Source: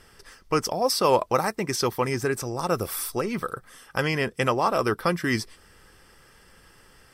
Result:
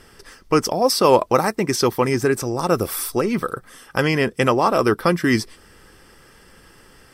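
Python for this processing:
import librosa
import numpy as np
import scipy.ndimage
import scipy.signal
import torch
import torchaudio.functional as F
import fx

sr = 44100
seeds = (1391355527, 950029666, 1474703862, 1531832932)

y = fx.peak_eq(x, sr, hz=290.0, db=4.5, octaves=1.3)
y = y * librosa.db_to_amplitude(4.5)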